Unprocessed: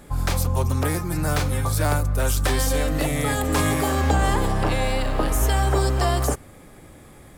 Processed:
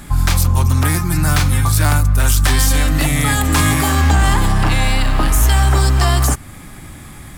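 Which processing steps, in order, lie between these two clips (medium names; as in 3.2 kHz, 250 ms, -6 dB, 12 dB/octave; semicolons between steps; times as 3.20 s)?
peaking EQ 490 Hz -14.5 dB 1 oct; in parallel at -2 dB: compression 10:1, threshold -31 dBFS, peak gain reduction 14.5 dB; on the sum: overload inside the chain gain 15 dB; trim +8 dB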